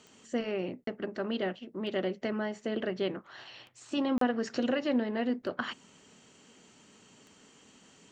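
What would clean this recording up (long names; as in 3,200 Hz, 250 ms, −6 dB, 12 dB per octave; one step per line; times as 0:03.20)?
click removal
repair the gap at 0:00.84/0:04.18, 33 ms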